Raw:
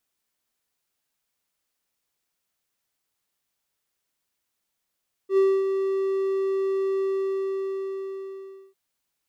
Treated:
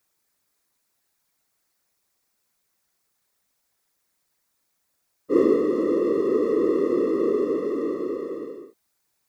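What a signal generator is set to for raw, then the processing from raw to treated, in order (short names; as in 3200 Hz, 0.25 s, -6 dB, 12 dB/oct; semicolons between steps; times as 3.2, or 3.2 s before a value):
ADSR triangle 387 Hz, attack 84 ms, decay 0.26 s, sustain -7 dB, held 1.72 s, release 1.73 s -13 dBFS
bell 3000 Hz -7 dB 0.44 oct; in parallel at +1 dB: compressor, threshold -32 dBFS; on the sum: whisperiser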